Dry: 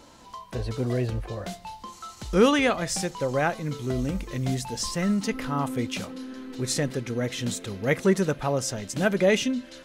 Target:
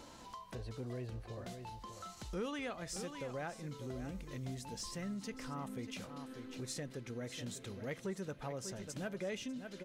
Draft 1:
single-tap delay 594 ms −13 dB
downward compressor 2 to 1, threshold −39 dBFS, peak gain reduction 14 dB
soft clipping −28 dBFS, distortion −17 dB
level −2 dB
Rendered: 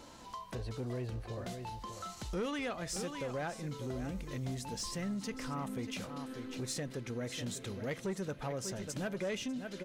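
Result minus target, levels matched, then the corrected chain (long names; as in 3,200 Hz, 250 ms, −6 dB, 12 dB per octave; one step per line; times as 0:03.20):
downward compressor: peak gain reduction −5 dB
single-tap delay 594 ms −13 dB
downward compressor 2 to 1, threshold −49.5 dBFS, peak gain reduction 19 dB
soft clipping −28 dBFS, distortion −25 dB
level −2 dB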